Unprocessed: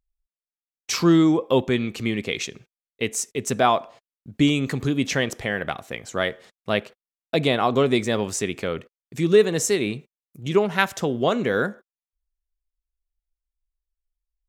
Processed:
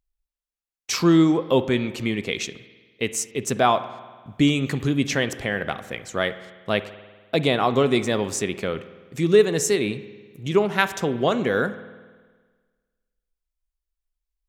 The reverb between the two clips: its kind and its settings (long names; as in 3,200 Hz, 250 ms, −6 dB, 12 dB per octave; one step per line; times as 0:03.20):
spring reverb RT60 1.5 s, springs 49 ms, chirp 25 ms, DRR 13.5 dB